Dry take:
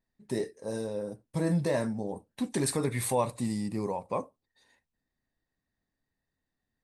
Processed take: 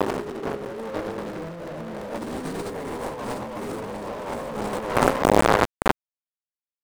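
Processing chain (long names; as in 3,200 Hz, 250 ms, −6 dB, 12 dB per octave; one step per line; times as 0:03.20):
peak hold with a rise ahead of every peak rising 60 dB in 2.05 s
0:00.91–0:03.19: parametric band 130 Hz −12.5 dB 0.21 octaves
delay that swaps between a low-pass and a high-pass 346 ms, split 1,700 Hz, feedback 75%, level −2 dB
brickwall limiter −19.5 dBFS, peak gain reduction 10.5 dB
flanger 0.75 Hz, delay 9.7 ms, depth 5.3 ms, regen +7%
mains-hum notches 60/120/180/240/300/360 Hz
wave folding −24 dBFS
low-shelf EQ 410 Hz +9 dB
bit reduction 5 bits
mid-hump overdrive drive 27 dB, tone 1,100 Hz, clips at −13.5 dBFS
compressor whose output falls as the input rises −31 dBFS, ratio −0.5
regular buffer underruns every 0.34 s, samples 128, repeat, from 0:00.65
level +6.5 dB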